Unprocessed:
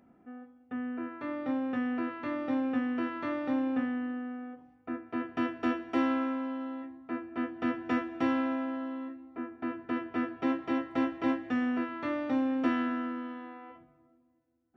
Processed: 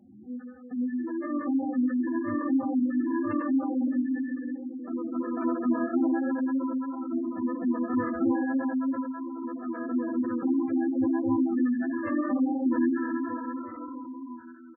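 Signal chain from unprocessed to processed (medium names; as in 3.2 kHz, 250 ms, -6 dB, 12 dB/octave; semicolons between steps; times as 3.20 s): 3.99–5.62 s: peaking EQ 78 Hz -13.5 dB 1.1 oct; reverse bouncing-ball echo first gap 120 ms, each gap 1.5×, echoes 5; on a send at -2 dB: reverberation RT60 0.60 s, pre-delay 3 ms; on the sum: chorus 3 Hz, delay 20 ms, depth 4.1 ms; in parallel at +1 dB: compression, threshold -36 dBFS, peak gain reduction 13.5 dB; 9.05–9.85 s: on the sum: bass shelf 270 Hz -6.5 dB; spectral gate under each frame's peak -15 dB strong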